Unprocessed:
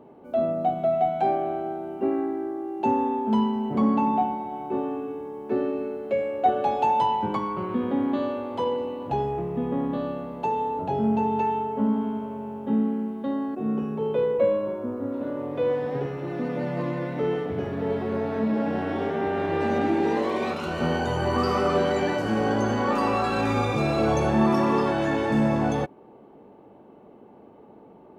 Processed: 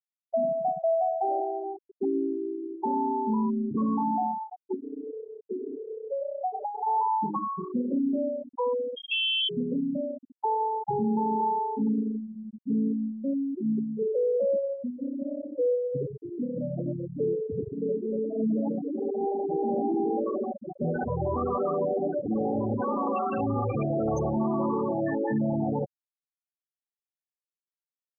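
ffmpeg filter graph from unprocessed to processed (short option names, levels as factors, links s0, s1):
-filter_complex "[0:a]asettb=1/sr,asplit=3[s0][s1][s2];[s0]atrim=end=4.744[s3];[s1]atrim=start=4.74:end=6.87,asetpts=PTS-STARTPTS,afade=t=in:d=0.004:c=qsin,afade=t=out:st=2.126:d=0.004:c=qsin,asplit=5[s4][s5][s6][s7][s8];[s5]adelay=92,afreqshift=31,volume=0.355[s9];[s6]adelay=184,afreqshift=62,volume=0.117[s10];[s7]adelay=276,afreqshift=93,volume=0.0385[s11];[s8]adelay=368,afreqshift=124,volume=0.0127[s12];[s4][s9][s10][s11][s12]amix=inputs=5:normalize=0,atrim=end_sample=93933,acompressor=threshold=0.0398:ratio=3:attack=3.2:release=140:knee=1:detection=peak[s13];[s2]atrim=start=6.866[s14];[s3][s13]acrossfade=d=0.004:c1=hsin:c2=qsin[s15];[s15][s14]acrossfade=d=0.004:c1=qsin:c2=hsin,asettb=1/sr,asplit=3[s16][s17][s18];[s16]atrim=end=8.964[s19];[s17]atrim=start=8.96:end=9.49,asetpts=PTS-STARTPTS,afade=t=in:d=0.004:c=qsin,afade=t=out:st=0.526:d=0.004:c=qsin,lowshelf=f=72:g=-10,aecho=1:1:7:0.55,atrim=end_sample=23373,lowpass=f=3000:t=q:w=0.5098,lowpass=f=3000:t=q:w=0.6013,lowpass=f=3000:t=q:w=0.9,lowpass=f=3000:t=q:w=2.563,afreqshift=-3500[s20];[s18]atrim=start=9.486[s21];[s19][s20]acrossfade=d=0.004:c1=hsin:c2=qsin[s22];[s22][s21]acrossfade=d=0.004:c1=qsin:c2=hsin,asettb=1/sr,asplit=3[s23][s24][s25];[s23]atrim=end=19.144[s26];[s24]atrim=start=19.14:end=23.14,asetpts=PTS-STARTPTS,afade=t=in:d=0.004:c=qsin,afade=t=out:st=3.996:d=0.004:c=qsin,lowpass=f=3700:p=1,bandreject=f=50:t=h:w=6,bandreject=f=100:t=h:w=6,bandreject=f=150:t=h:w=6,bandreject=f=200:t=h:w=6,bandreject=f=250:t=h:w=6,bandreject=f=300:t=h:w=6,bandreject=f=350:t=h:w=6[s27];[s25]atrim=start=23.136[s28];[s26][s27]acrossfade=d=0.004:c1=hsin:c2=qsin[s29];[s29][s28]acrossfade=d=0.004:c1=qsin:c2=hsin,highshelf=f=4300:g=7,afftfilt=real='re*gte(hypot(re,im),0.2)':imag='im*gte(hypot(re,im),0.2)':win_size=1024:overlap=0.75,alimiter=limit=0.1:level=0:latency=1:release=19"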